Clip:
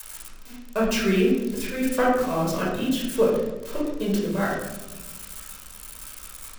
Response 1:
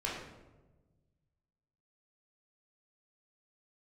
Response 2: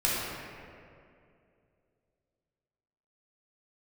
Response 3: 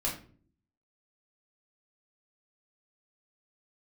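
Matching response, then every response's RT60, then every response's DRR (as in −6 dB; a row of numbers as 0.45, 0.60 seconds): 1; 1.2, 2.5, 0.45 seconds; −5.5, −7.5, −4.0 decibels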